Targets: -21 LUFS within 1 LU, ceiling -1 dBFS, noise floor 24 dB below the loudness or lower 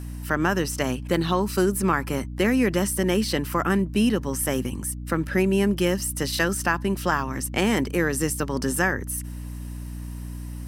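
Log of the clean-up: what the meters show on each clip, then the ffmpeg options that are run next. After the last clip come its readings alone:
hum 60 Hz; harmonics up to 300 Hz; hum level -32 dBFS; loudness -24.0 LUFS; peak -7.0 dBFS; loudness target -21.0 LUFS
-> -af "bandreject=f=60:t=h:w=6,bandreject=f=120:t=h:w=6,bandreject=f=180:t=h:w=6,bandreject=f=240:t=h:w=6,bandreject=f=300:t=h:w=6"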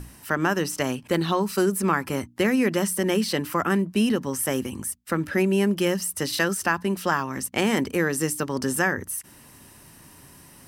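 hum none; loudness -24.5 LUFS; peak -7.5 dBFS; loudness target -21.0 LUFS
-> -af "volume=3.5dB"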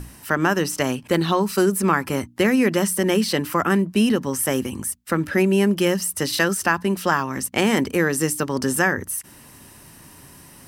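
loudness -21.0 LUFS; peak -4.0 dBFS; noise floor -47 dBFS

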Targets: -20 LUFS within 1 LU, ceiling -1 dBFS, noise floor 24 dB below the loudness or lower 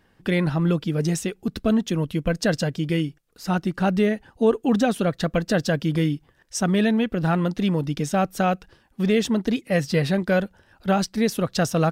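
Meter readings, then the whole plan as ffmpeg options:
loudness -23.5 LUFS; peak -9.0 dBFS; loudness target -20.0 LUFS
-> -af "volume=3.5dB"

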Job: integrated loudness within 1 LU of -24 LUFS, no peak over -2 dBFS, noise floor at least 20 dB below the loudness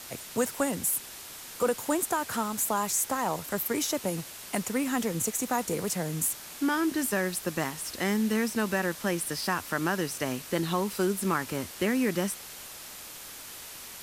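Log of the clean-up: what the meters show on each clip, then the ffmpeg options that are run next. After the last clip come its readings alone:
noise floor -44 dBFS; noise floor target -49 dBFS; loudness -29.0 LUFS; peak -13.5 dBFS; loudness target -24.0 LUFS
-> -af "afftdn=nr=6:nf=-44"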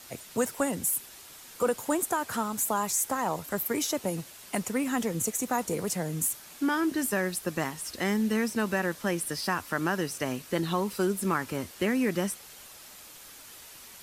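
noise floor -49 dBFS; noise floor target -50 dBFS
-> -af "afftdn=nr=6:nf=-49"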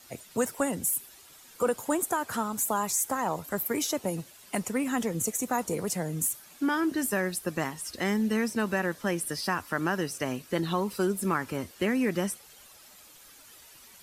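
noise floor -53 dBFS; loudness -29.5 LUFS; peak -13.5 dBFS; loudness target -24.0 LUFS
-> -af "volume=5.5dB"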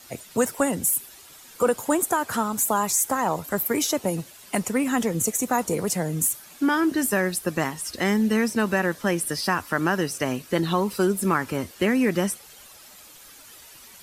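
loudness -24.0 LUFS; peak -8.0 dBFS; noise floor -48 dBFS

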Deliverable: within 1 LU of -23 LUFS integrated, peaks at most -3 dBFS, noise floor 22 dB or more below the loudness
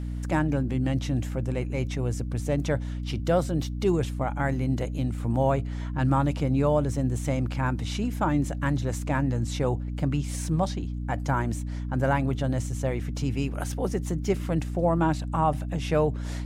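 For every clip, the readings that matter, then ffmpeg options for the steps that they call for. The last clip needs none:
hum 60 Hz; harmonics up to 300 Hz; hum level -29 dBFS; loudness -27.5 LUFS; peak -11.5 dBFS; loudness target -23.0 LUFS
-> -af "bandreject=f=60:t=h:w=6,bandreject=f=120:t=h:w=6,bandreject=f=180:t=h:w=6,bandreject=f=240:t=h:w=6,bandreject=f=300:t=h:w=6"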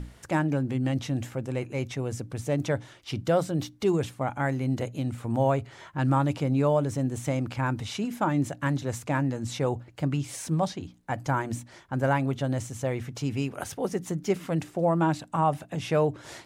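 hum none; loudness -28.5 LUFS; peak -12.5 dBFS; loudness target -23.0 LUFS
-> -af "volume=5.5dB"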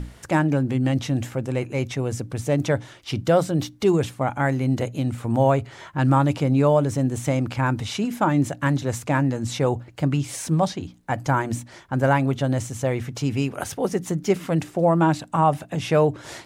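loudness -23.0 LUFS; peak -7.0 dBFS; noise floor -47 dBFS

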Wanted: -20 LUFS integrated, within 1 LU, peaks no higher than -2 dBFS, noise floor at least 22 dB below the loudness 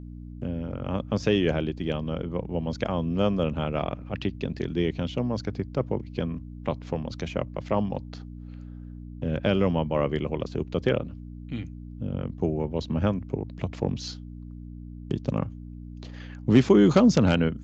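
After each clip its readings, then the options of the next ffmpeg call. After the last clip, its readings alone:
hum 60 Hz; harmonics up to 300 Hz; hum level -38 dBFS; loudness -27.0 LUFS; peak -6.0 dBFS; loudness target -20.0 LUFS
-> -af "bandreject=f=60:t=h:w=4,bandreject=f=120:t=h:w=4,bandreject=f=180:t=h:w=4,bandreject=f=240:t=h:w=4,bandreject=f=300:t=h:w=4"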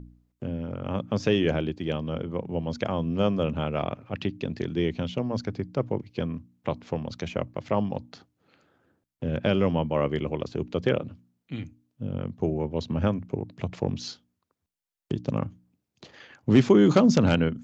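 hum none; loudness -27.0 LUFS; peak -6.0 dBFS; loudness target -20.0 LUFS
-> -af "volume=7dB,alimiter=limit=-2dB:level=0:latency=1"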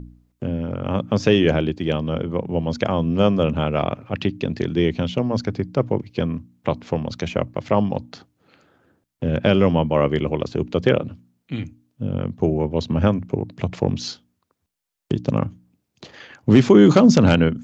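loudness -20.5 LUFS; peak -2.0 dBFS; noise floor -75 dBFS

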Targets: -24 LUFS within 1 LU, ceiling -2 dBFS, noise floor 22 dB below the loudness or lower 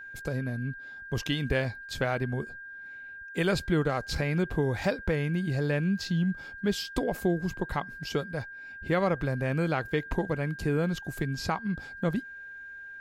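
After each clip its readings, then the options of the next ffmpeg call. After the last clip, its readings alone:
steady tone 1600 Hz; tone level -41 dBFS; loudness -30.5 LUFS; peak -13.0 dBFS; loudness target -24.0 LUFS
-> -af "bandreject=f=1.6k:w=30"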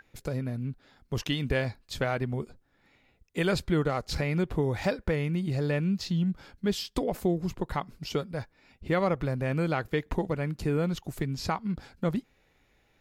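steady tone none; loudness -30.5 LUFS; peak -13.5 dBFS; loudness target -24.0 LUFS
-> -af "volume=6.5dB"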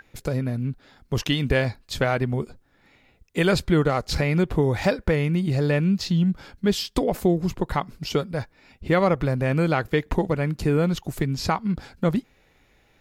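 loudness -24.0 LUFS; peak -7.0 dBFS; noise floor -61 dBFS

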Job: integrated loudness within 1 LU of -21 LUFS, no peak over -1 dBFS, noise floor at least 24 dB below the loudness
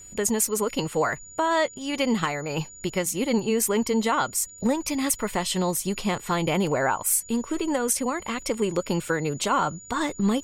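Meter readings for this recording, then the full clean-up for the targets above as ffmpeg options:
steady tone 6900 Hz; tone level -43 dBFS; loudness -25.5 LUFS; peak -8.0 dBFS; loudness target -21.0 LUFS
-> -af "bandreject=f=6.9k:w=30"
-af "volume=4.5dB"

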